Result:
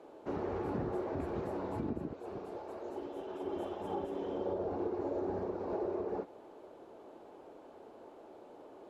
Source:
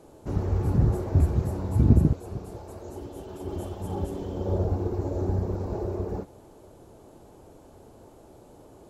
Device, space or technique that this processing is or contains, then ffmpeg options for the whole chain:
DJ mixer with the lows and highs turned down: -filter_complex "[0:a]asettb=1/sr,asplit=3[link_01][link_02][link_03];[link_01]atrim=end=3.104[link_04];[link_02]atrim=start=3.1:end=4.4,asetpts=PTS-STARTPTS,afade=type=in:duration=0.004:curve=qsin,afade=type=out:start_time=1.296:duration=0.004:curve=qsin,bandreject=frequency=4400:width=11[link_05];[link_03]atrim=start=4.396[link_06];[link_04][link_05]acrossfade=duration=0.004:curve1=hsin:curve2=qsin[link_07];[link_07][link_06]acrossfade=duration=0.004:curve1=qsin:curve2=hsin,acrossover=split=260 3800:gain=0.0708 1 0.112[link_08][link_09][link_10];[link_08][link_09][link_10]amix=inputs=3:normalize=0,alimiter=level_in=3dB:limit=-24dB:level=0:latency=1:release=236,volume=-3dB"

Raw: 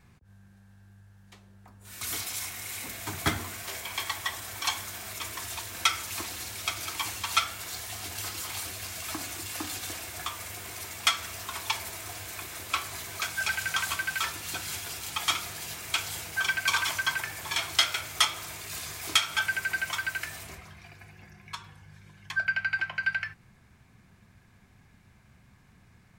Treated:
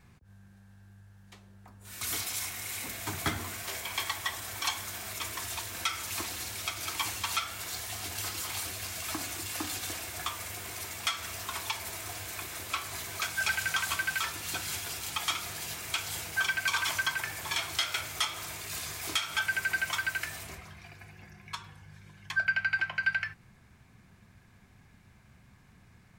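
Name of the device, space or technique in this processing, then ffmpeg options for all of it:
soft clipper into limiter: -af "asoftclip=type=tanh:threshold=-9.5dB,alimiter=limit=-18dB:level=0:latency=1:release=200"

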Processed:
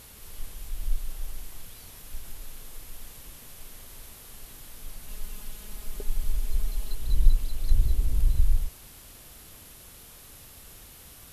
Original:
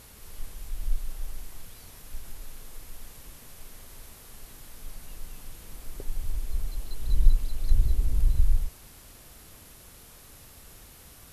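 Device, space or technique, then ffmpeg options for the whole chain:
presence and air boost: -filter_complex "[0:a]asettb=1/sr,asplit=3[link_01][link_02][link_03];[link_01]atrim=end=5.084[link_04];[link_02]atrim=start=5.08:end=6.95,asetpts=PTS-STARTPTS,afade=type=in:duration=0.004:curve=qsin,afade=type=out:start_time=1.866:duration=0.004:curve=qsin,aecho=1:1:4.8:0.65,atrim=end_sample=82467[link_05];[link_03]atrim=start=6.946[link_06];[link_04][link_05]acrossfade=duration=0.004:curve1=hsin:curve2=qsin[link_07];[link_07][link_06]acrossfade=duration=0.004:curve1=qsin:curve2=hsin,equalizer=frequency=3200:width_type=o:width=0.77:gain=3,highshelf=frequency=10000:gain=5"

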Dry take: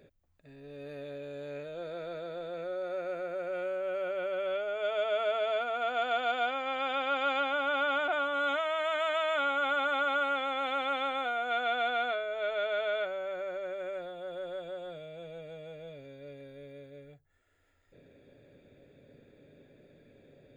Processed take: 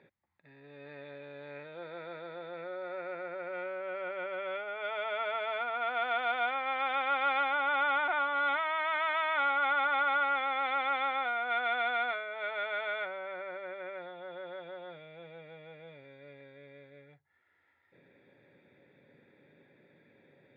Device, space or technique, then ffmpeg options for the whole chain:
kitchen radio: -af "highpass=180,equalizer=frequency=270:width_type=q:width=4:gain=-6,equalizer=frequency=440:width_type=q:width=4:gain=-6,equalizer=frequency=630:width_type=q:width=4:gain=-8,equalizer=frequency=900:width_type=q:width=4:gain=8,equalizer=frequency=2000:width_type=q:width=4:gain=8,equalizer=frequency=2900:width_type=q:width=4:gain=-6,lowpass=frequency=3800:width=0.5412,lowpass=frequency=3800:width=1.3066"

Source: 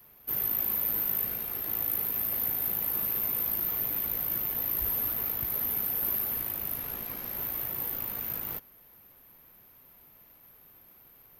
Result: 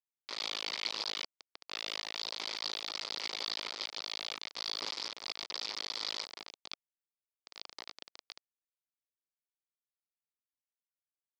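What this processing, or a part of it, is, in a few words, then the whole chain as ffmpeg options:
hand-held game console: -af "acrusher=bits=3:mix=0:aa=0.000001,highpass=420,equalizer=frequency=700:width_type=q:width=4:gain=-5,equalizer=frequency=1600:width_type=q:width=4:gain=-8,equalizer=frequency=2800:width_type=q:width=4:gain=-6,equalizer=frequency=4800:width_type=q:width=4:gain=7,lowpass=frequency=5000:width=0.5412,lowpass=frequency=5000:width=1.3066"

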